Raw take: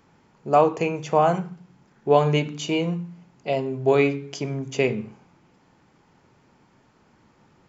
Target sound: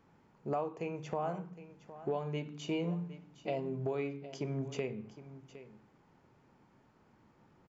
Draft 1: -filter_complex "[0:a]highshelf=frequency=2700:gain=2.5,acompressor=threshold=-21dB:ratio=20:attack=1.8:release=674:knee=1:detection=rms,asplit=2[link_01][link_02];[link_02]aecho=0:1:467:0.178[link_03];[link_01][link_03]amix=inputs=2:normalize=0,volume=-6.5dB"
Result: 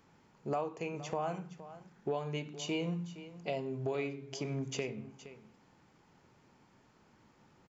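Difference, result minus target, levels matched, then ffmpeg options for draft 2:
echo 295 ms early; 4,000 Hz band +5.0 dB
-filter_complex "[0:a]highshelf=frequency=2700:gain=-8,acompressor=threshold=-21dB:ratio=20:attack=1.8:release=674:knee=1:detection=rms,asplit=2[link_01][link_02];[link_02]aecho=0:1:762:0.178[link_03];[link_01][link_03]amix=inputs=2:normalize=0,volume=-6.5dB"

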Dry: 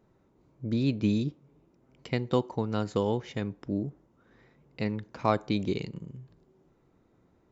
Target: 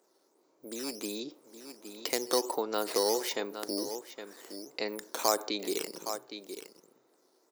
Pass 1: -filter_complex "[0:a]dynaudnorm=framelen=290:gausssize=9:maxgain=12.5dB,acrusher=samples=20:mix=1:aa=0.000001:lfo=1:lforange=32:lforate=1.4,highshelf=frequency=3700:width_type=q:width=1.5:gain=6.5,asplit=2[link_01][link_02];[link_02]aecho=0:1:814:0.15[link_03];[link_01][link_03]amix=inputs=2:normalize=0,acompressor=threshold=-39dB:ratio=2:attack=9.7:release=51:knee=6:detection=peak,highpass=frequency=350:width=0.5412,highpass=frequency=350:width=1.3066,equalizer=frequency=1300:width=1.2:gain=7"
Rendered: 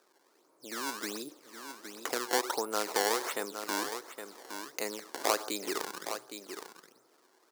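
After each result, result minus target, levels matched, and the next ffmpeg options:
sample-and-hold swept by an LFO: distortion +12 dB; downward compressor: peak gain reduction +4 dB; 1,000 Hz band +3.0 dB
-filter_complex "[0:a]dynaudnorm=framelen=290:gausssize=9:maxgain=12.5dB,acrusher=samples=5:mix=1:aa=0.000001:lfo=1:lforange=8:lforate=1.4,highshelf=frequency=3700:width_type=q:width=1.5:gain=6.5,asplit=2[link_01][link_02];[link_02]aecho=0:1:814:0.15[link_03];[link_01][link_03]amix=inputs=2:normalize=0,acompressor=threshold=-39dB:ratio=2:attack=9.7:release=51:knee=6:detection=peak,highpass=frequency=350:width=0.5412,highpass=frequency=350:width=1.3066,equalizer=frequency=1300:width=1.2:gain=7"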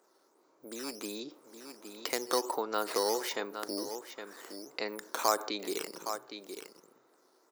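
downward compressor: peak gain reduction +3 dB; 1,000 Hz band +3.0 dB
-filter_complex "[0:a]dynaudnorm=framelen=290:gausssize=9:maxgain=12.5dB,acrusher=samples=5:mix=1:aa=0.000001:lfo=1:lforange=8:lforate=1.4,highshelf=frequency=3700:width_type=q:width=1.5:gain=6.5,asplit=2[link_01][link_02];[link_02]aecho=0:1:814:0.15[link_03];[link_01][link_03]amix=inputs=2:normalize=0,acompressor=threshold=-32.5dB:ratio=2:attack=9.7:release=51:knee=6:detection=peak,highpass=frequency=350:width=0.5412,highpass=frequency=350:width=1.3066,equalizer=frequency=1300:width=1.2:gain=7"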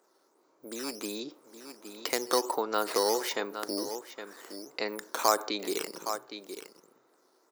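1,000 Hz band +3.0 dB
-filter_complex "[0:a]dynaudnorm=framelen=290:gausssize=9:maxgain=12.5dB,acrusher=samples=5:mix=1:aa=0.000001:lfo=1:lforange=8:lforate=1.4,highshelf=frequency=3700:width_type=q:width=1.5:gain=6.5,asplit=2[link_01][link_02];[link_02]aecho=0:1:814:0.15[link_03];[link_01][link_03]amix=inputs=2:normalize=0,acompressor=threshold=-32.5dB:ratio=2:attack=9.7:release=51:knee=6:detection=peak,highpass=frequency=350:width=0.5412,highpass=frequency=350:width=1.3066"

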